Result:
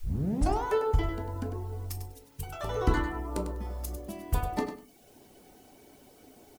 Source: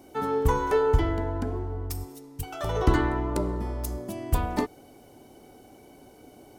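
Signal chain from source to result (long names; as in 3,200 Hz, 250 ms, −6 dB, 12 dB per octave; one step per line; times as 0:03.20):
turntable start at the beginning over 0.64 s
in parallel at −6.5 dB: bit-depth reduction 8 bits, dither triangular
on the sum: reverb reduction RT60 0.76 s
repeating echo 99 ms, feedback 17%, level −9.5 dB
on a send at −8.5 dB: convolution reverb RT60 0.35 s, pre-delay 5 ms
on the sum: level −7.5 dB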